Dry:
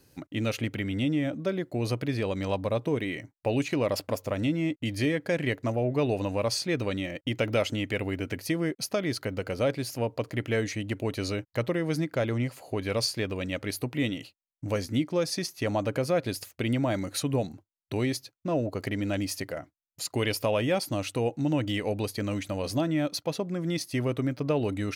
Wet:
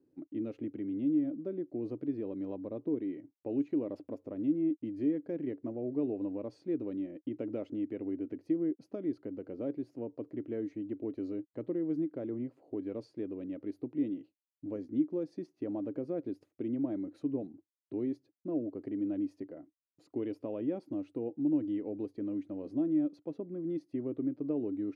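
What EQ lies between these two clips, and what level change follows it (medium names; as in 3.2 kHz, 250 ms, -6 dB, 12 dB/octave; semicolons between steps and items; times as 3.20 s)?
band-pass filter 310 Hz, Q 3.8; 0.0 dB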